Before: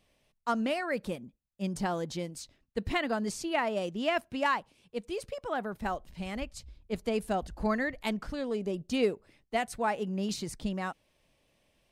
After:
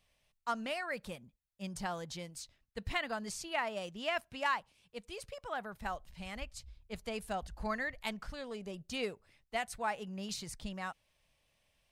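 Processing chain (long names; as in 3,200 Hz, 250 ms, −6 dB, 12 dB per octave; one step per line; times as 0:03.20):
parametric band 310 Hz −11.5 dB 1.7 octaves
level −2.5 dB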